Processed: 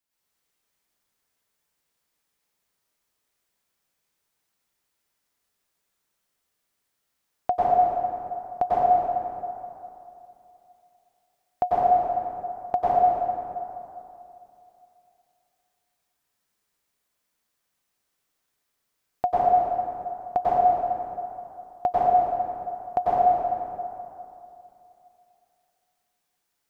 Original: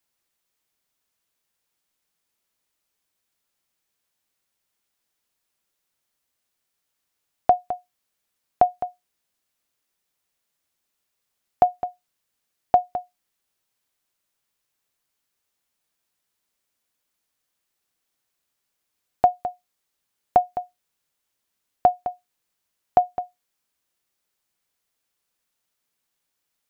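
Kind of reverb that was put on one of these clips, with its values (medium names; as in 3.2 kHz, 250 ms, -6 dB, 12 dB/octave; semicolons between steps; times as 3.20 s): plate-style reverb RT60 2.8 s, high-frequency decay 0.55×, pre-delay 85 ms, DRR -10 dB; trim -8 dB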